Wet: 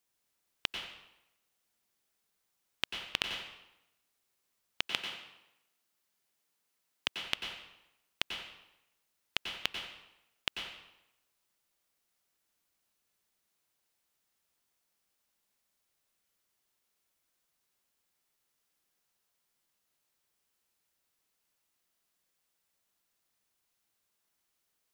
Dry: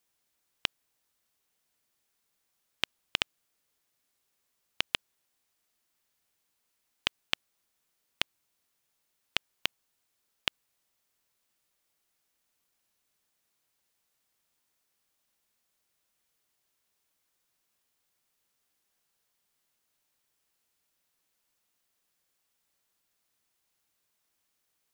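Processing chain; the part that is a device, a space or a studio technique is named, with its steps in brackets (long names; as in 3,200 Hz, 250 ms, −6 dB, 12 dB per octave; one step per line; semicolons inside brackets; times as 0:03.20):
bathroom (convolution reverb RT60 0.90 s, pre-delay 87 ms, DRR 3 dB)
0:04.87–0:07.21: high-pass filter 110 Hz 12 dB per octave
level −3.5 dB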